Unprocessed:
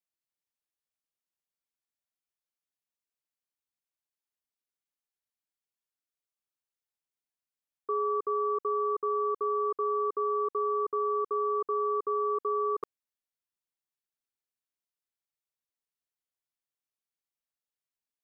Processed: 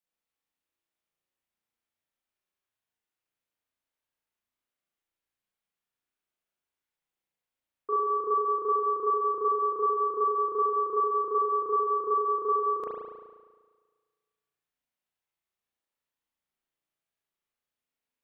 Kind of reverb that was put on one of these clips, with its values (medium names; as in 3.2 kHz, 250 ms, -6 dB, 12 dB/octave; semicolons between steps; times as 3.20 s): spring tank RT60 1.5 s, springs 35 ms, chirp 50 ms, DRR -6.5 dB; trim -1 dB